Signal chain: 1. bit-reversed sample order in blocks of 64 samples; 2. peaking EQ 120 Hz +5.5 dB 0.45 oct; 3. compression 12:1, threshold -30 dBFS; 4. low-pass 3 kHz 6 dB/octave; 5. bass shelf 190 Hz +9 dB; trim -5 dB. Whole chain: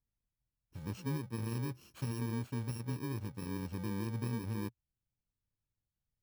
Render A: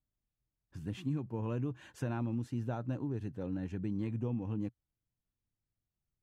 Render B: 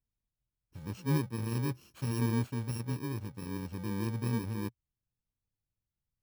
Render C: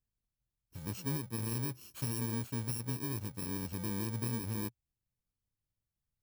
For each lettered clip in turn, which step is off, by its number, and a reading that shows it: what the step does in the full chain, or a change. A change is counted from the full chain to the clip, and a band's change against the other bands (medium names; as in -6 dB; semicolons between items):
1, 2 kHz band -4.0 dB; 3, mean gain reduction 3.0 dB; 4, 8 kHz band +9.5 dB